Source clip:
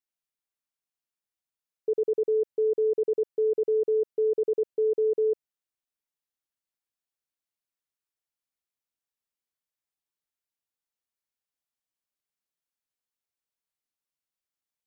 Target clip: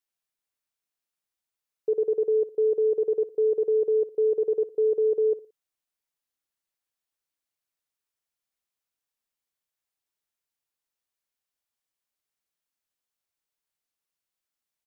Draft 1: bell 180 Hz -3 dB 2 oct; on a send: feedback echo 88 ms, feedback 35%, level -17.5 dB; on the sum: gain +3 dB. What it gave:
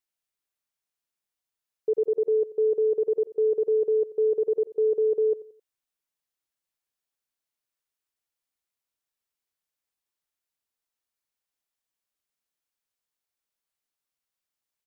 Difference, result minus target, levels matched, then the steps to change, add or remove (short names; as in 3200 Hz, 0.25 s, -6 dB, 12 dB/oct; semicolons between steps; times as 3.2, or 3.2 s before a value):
echo 30 ms late
change: feedback echo 58 ms, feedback 35%, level -17.5 dB